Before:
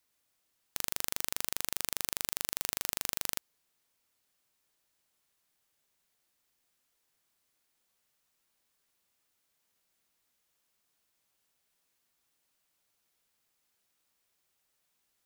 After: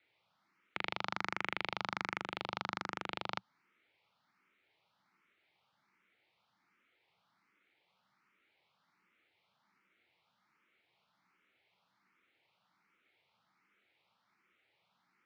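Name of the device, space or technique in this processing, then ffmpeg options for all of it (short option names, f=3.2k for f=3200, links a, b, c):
barber-pole phaser into a guitar amplifier: -filter_complex "[0:a]asettb=1/sr,asplit=3[a][b][c];[a]atrim=end=2.174[d];[b]atrim=start=2.17:end=3.35,asetpts=PTS-STARTPTS,afade=t=in:d=0.004:c=qsin,afade=t=out:st=1.176:d=0.004:c=qsin,equalizer=f=2.2k:t=o:w=0.7:g=-5[e];[c]atrim=start=3.346[f];[d][e]acrossfade=d=0.004:c1=hsin:c2=qsin[g];[g][f]acrossfade=d=0.004:c1=qsin:c2=hsin,asplit=2[h][i];[i]afreqshift=1.3[j];[h][j]amix=inputs=2:normalize=1,asoftclip=type=tanh:threshold=-20.5dB,highpass=110,equalizer=f=120:t=q:w=4:g=4,equalizer=f=190:t=q:w=4:g=8,equalizer=f=340:t=q:w=4:g=4,equalizer=f=870:t=q:w=4:g=6,equalizer=f=1.3k:t=q:w=4:g=8,equalizer=f=2.2k:t=q:w=4:g=9,lowpass=f=3.9k:w=0.5412,lowpass=f=3.9k:w=1.3066,volume=6.5dB"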